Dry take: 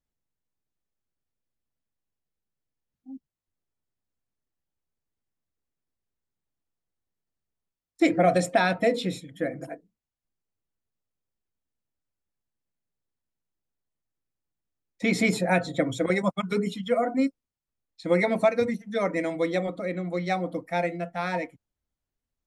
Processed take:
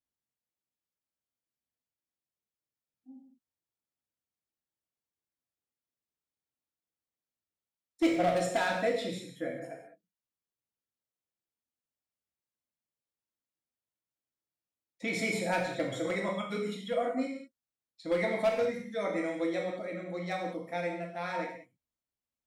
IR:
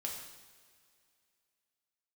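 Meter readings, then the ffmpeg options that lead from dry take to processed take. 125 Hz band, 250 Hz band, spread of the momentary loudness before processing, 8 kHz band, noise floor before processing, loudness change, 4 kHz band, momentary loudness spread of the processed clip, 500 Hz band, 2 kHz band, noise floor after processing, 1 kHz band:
-10.0 dB, -7.5 dB, 10 LU, -5.0 dB, under -85 dBFS, -6.5 dB, -4.5 dB, 10 LU, -6.0 dB, -6.0 dB, under -85 dBFS, -6.0 dB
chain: -filter_complex "[0:a]highpass=f=150:p=1,aeval=exprs='0.2*(abs(mod(val(0)/0.2+3,4)-2)-1)':c=same[a];[1:a]atrim=start_sample=2205,afade=t=out:st=0.26:d=0.01,atrim=end_sample=11907[b];[a][b]afir=irnorm=-1:irlink=0,volume=-5.5dB"

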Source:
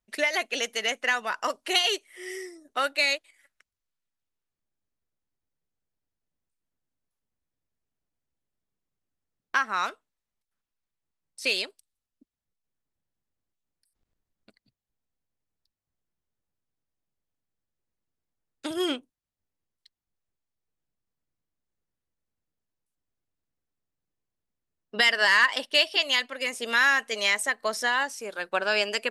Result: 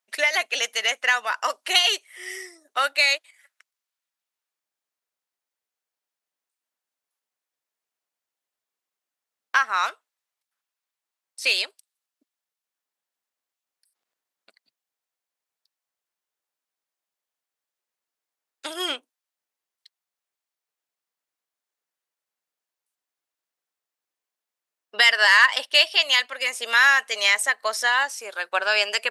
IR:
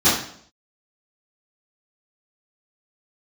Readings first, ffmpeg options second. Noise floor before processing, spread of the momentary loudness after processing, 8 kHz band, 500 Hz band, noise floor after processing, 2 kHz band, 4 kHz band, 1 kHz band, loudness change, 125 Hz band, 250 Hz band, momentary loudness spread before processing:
under -85 dBFS, 15 LU, +5.0 dB, -0.5 dB, under -85 dBFS, +5.0 dB, +5.0 dB, +4.0 dB, +4.5 dB, n/a, -8.5 dB, 14 LU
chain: -af "highpass=690,volume=5dB"

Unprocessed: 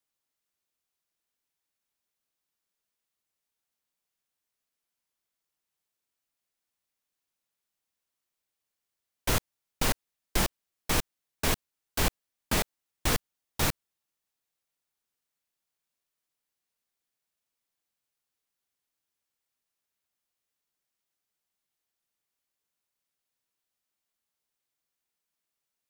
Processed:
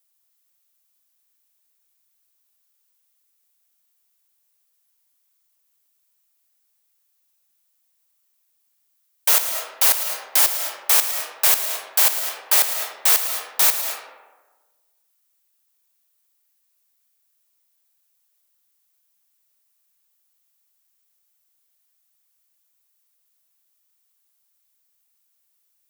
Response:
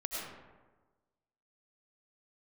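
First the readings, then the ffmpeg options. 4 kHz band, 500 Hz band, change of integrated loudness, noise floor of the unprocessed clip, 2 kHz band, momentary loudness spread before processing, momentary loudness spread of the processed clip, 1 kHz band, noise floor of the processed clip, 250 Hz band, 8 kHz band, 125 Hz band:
+9.5 dB, +1.5 dB, +13.0 dB, under -85 dBFS, +7.0 dB, 7 LU, 8 LU, +6.0 dB, -69 dBFS, under -15 dB, +14.0 dB, under -40 dB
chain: -filter_complex "[0:a]highpass=f=560:w=0.5412,highpass=f=560:w=1.3066,aemphasis=mode=production:type=50kf,asplit=2[a][b];[1:a]atrim=start_sample=2205,adelay=111[c];[b][c]afir=irnorm=-1:irlink=0,volume=-8dB[d];[a][d]amix=inputs=2:normalize=0,volume=4.5dB"

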